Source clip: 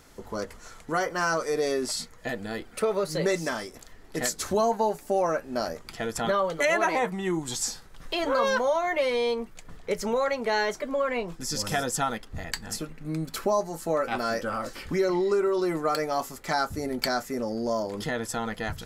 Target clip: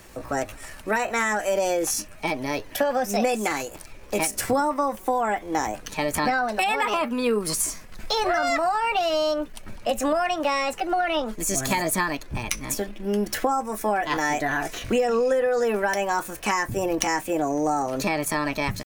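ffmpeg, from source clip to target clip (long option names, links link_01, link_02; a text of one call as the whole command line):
ffmpeg -i in.wav -filter_complex "[0:a]asetrate=57191,aresample=44100,atempo=0.771105,acrossover=split=290[link_01][link_02];[link_02]acompressor=threshold=-27dB:ratio=6[link_03];[link_01][link_03]amix=inputs=2:normalize=0,volume=6.5dB" out.wav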